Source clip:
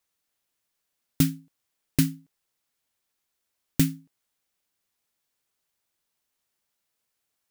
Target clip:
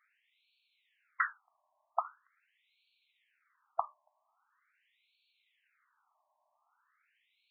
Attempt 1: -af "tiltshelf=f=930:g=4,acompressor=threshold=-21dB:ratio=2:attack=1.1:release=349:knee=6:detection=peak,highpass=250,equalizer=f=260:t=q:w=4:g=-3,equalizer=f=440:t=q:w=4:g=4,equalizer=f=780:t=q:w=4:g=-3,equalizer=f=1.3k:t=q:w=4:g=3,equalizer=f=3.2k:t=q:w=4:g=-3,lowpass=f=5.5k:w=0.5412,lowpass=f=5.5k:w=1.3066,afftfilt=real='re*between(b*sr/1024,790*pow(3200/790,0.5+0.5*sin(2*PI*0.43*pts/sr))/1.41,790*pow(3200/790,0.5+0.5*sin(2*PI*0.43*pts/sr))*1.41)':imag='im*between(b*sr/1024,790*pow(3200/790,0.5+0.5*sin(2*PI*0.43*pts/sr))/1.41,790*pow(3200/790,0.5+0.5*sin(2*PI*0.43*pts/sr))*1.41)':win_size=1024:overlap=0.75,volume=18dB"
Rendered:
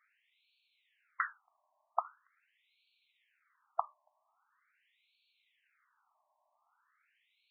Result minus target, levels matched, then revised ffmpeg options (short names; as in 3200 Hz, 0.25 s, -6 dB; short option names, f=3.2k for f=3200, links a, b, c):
compressor: peak gain reduction +4.5 dB
-af "tiltshelf=f=930:g=4,acompressor=threshold=-11.5dB:ratio=2:attack=1.1:release=349:knee=6:detection=peak,highpass=250,equalizer=f=260:t=q:w=4:g=-3,equalizer=f=440:t=q:w=4:g=4,equalizer=f=780:t=q:w=4:g=-3,equalizer=f=1.3k:t=q:w=4:g=3,equalizer=f=3.2k:t=q:w=4:g=-3,lowpass=f=5.5k:w=0.5412,lowpass=f=5.5k:w=1.3066,afftfilt=real='re*between(b*sr/1024,790*pow(3200/790,0.5+0.5*sin(2*PI*0.43*pts/sr))/1.41,790*pow(3200/790,0.5+0.5*sin(2*PI*0.43*pts/sr))*1.41)':imag='im*between(b*sr/1024,790*pow(3200/790,0.5+0.5*sin(2*PI*0.43*pts/sr))/1.41,790*pow(3200/790,0.5+0.5*sin(2*PI*0.43*pts/sr))*1.41)':win_size=1024:overlap=0.75,volume=18dB"